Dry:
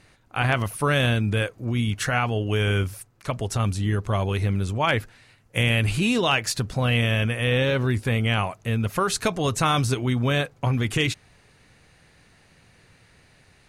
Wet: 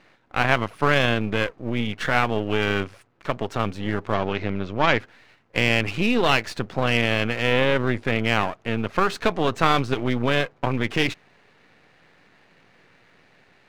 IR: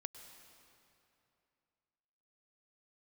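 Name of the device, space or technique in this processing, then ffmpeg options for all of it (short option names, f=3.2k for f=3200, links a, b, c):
crystal radio: -filter_complex "[0:a]highpass=210,lowpass=2.8k,aeval=exprs='if(lt(val(0),0),0.251*val(0),val(0))':c=same,asettb=1/sr,asplit=3[a][b][c];[a]atrim=end=4.144[d];[b]atrim=start=4.14:end=4.99,asetpts=PTS-STARTPTS,afade=t=in:d=0.004:c=qsin,afade=t=out:st=0.846:d=0.004:c=qsin,lowpass=f=6.2k:w=0.5412,lowpass=f=6.2k:w=1.3066[e];[c]atrim=start=4.986[f];[d][e]acrossfade=d=0.004:c1=hsin:c2=qsin[g];[g][f]acrossfade=d=0.004:c1=qsin:c2=hsin,volume=6dB"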